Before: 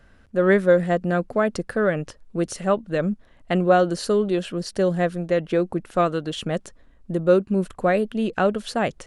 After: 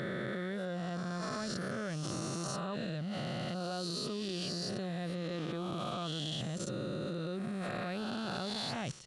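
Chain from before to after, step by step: spectral swells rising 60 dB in 2.49 s; graphic EQ 125/500/2000/4000 Hz +11/-8/-6/+11 dB; limiter -14.5 dBFS, peak gain reduction 10.5 dB; HPF 80 Hz 6 dB/oct; level quantiser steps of 16 dB; gain -5.5 dB

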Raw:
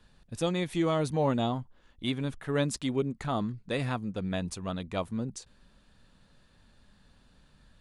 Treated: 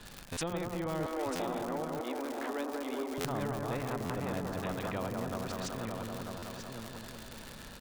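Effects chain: reverse delay 0.502 s, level -3 dB; analogue delay 0.188 s, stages 2048, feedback 58%, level -6 dB; treble ducked by the level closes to 730 Hz, closed at -27 dBFS; 1.06–3.18 steep high-pass 250 Hz 96 dB/oct; crackle 190/s -45 dBFS; echo 0.941 s -11.5 dB; stuck buffer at 0.32/1.35/3.2/4.05/6.38, samples 512, times 3; spectral compressor 2:1

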